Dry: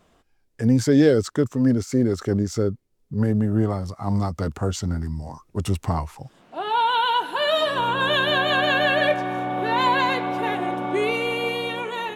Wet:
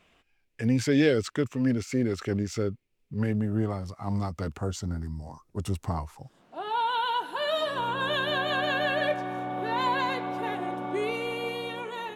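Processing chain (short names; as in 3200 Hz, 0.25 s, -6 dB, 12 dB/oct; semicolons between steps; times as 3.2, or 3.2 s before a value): bell 2500 Hz +14.5 dB 0.9 oct, from 3.35 s +5.5 dB, from 4.59 s -2.5 dB; gain -6.5 dB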